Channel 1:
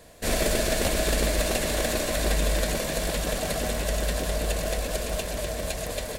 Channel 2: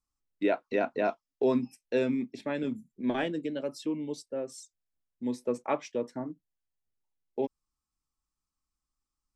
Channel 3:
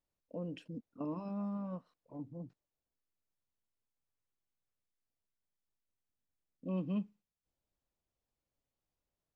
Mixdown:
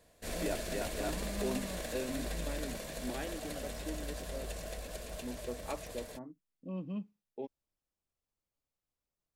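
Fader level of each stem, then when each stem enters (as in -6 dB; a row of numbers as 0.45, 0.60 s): -14.5, -11.0, -3.5 dB; 0.00, 0.00, 0.00 s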